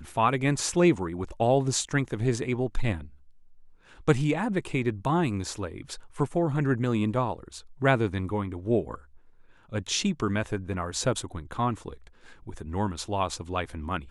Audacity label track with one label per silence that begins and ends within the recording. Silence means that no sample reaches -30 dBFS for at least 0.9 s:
2.980000	4.080000	silence